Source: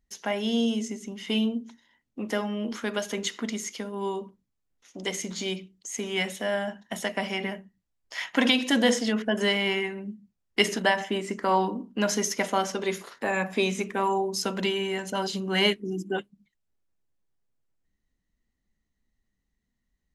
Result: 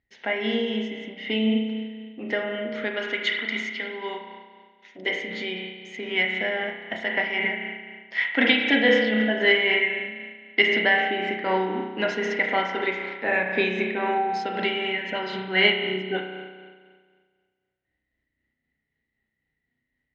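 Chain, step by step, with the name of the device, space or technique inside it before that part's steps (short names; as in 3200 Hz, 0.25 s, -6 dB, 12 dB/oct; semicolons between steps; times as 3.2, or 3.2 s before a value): combo amplifier with spring reverb and tremolo (spring tank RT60 1.7 s, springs 32 ms, chirp 65 ms, DRR 0.5 dB; tremolo 3.9 Hz, depth 31%; speaker cabinet 84–3700 Hz, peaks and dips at 190 Hz -10 dB, 1100 Hz -10 dB, 2000 Hz +9 dB); 3.13–4.98 tilt shelf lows -5.5 dB, about 890 Hz; gain +2 dB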